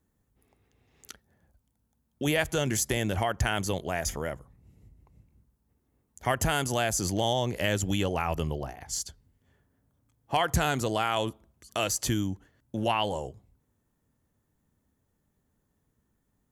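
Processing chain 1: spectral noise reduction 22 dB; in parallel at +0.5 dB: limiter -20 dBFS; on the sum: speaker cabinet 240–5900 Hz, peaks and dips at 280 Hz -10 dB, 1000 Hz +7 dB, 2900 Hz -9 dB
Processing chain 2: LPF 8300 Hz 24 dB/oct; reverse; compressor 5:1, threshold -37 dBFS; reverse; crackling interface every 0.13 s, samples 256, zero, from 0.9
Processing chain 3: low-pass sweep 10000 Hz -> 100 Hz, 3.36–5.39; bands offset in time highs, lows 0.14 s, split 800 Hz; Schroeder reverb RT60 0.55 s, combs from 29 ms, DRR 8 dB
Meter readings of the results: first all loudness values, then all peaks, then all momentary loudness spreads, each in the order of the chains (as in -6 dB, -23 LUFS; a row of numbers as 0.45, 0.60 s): -26.0, -41.0, -30.5 LUFS; -7.5, -23.0, -10.0 dBFS; 10, 12, 19 LU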